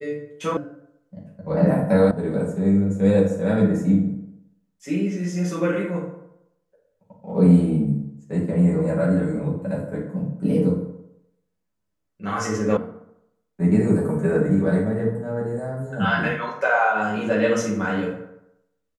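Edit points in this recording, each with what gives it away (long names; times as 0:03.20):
0:00.57: cut off before it has died away
0:02.11: cut off before it has died away
0:12.77: cut off before it has died away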